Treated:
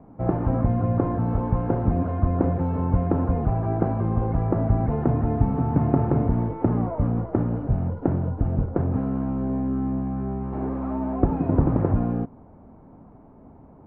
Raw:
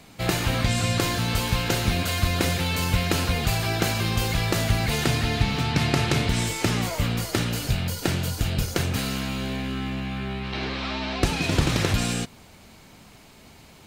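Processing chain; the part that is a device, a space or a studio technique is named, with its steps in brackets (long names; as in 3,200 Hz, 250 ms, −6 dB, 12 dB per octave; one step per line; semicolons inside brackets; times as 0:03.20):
under water (low-pass filter 990 Hz 24 dB per octave; parametric band 270 Hz +6 dB 0.29 octaves)
level +2 dB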